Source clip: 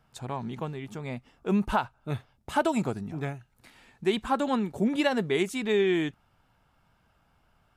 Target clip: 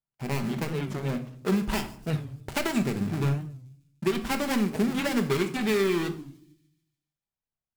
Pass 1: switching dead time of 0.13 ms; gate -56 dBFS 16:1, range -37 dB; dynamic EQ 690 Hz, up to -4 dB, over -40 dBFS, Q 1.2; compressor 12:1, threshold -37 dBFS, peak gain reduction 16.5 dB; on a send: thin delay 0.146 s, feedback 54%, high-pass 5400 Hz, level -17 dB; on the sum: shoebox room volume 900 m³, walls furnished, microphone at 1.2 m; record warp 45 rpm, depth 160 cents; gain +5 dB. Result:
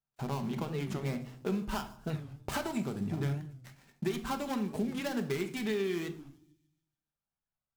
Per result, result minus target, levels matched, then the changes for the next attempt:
compressor: peak gain reduction +8.5 dB; switching dead time: distortion -8 dB
change: compressor 12:1, threshold -28 dBFS, peak gain reduction 8.5 dB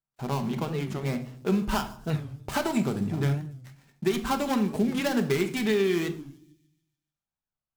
switching dead time: distortion -8 dB
change: switching dead time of 0.37 ms

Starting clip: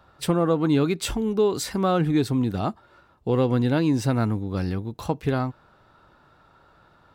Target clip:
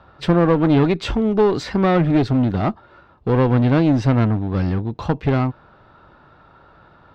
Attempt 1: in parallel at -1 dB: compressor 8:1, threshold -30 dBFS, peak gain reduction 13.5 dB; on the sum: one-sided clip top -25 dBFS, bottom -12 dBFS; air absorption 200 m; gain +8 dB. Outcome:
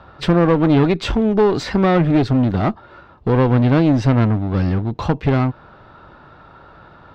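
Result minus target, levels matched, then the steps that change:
compressor: peak gain reduction +13.5 dB
remove: compressor 8:1, threshold -30 dBFS, peak gain reduction 13.5 dB

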